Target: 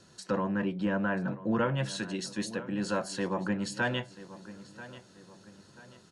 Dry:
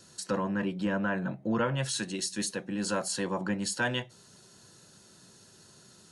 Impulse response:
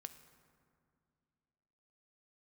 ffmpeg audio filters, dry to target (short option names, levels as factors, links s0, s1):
-filter_complex "[0:a]aemphasis=mode=reproduction:type=50fm,asplit=2[s0][s1];[s1]adelay=987,lowpass=f=4700:p=1,volume=0.158,asplit=2[s2][s3];[s3]adelay=987,lowpass=f=4700:p=1,volume=0.4,asplit=2[s4][s5];[s5]adelay=987,lowpass=f=4700:p=1,volume=0.4,asplit=2[s6][s7];[s7]adelay=987,lowpass=f=4700:p=1,volume=0.4[s8];[s0][s2][s4][s6][s8]amix=inputs=5:normalize=0"